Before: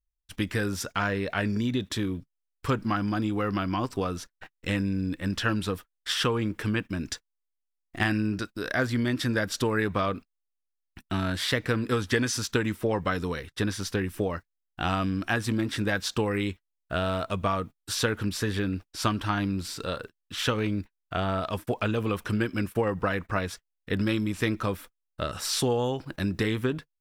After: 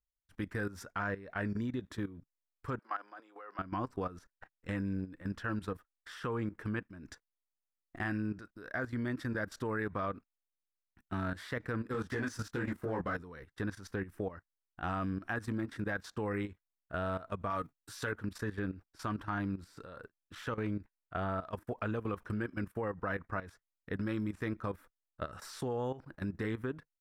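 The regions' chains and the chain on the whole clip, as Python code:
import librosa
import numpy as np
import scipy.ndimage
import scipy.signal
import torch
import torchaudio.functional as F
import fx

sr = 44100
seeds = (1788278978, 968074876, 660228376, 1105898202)

y = fx.chain(x, sr, fx.highpass(hz=490.0, slope=24),
    fx.high_shelf(hz=10000.0, db=-8.5), at=(2.79, 3.59))
y = fx.chain(y, sr, fx.leveller(passes=2),
    fx.detune_double(cents=37), at=(11.92, 13.16))
y = fx.chain(y, sr, fx.high_shelf(hz=2100.0, db=9.5),
    fx.comb(ms=7.1, depth=0.47), at=(17.5, 18.12))
y = fx.high_shelf_res(y, sr, hz=2200.0, db=-8.0, q=1.5)
y = fx.level_steps(y, sr, step_db=14)
y = y * 10.0 ** (-6.5 / 20.0)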